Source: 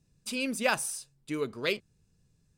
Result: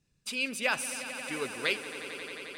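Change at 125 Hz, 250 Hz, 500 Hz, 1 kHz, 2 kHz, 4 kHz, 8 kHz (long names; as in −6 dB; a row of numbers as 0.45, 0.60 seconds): −6.5, −5.5, −3.5, −2.0, +2.5, +2.0, −1.5 decibels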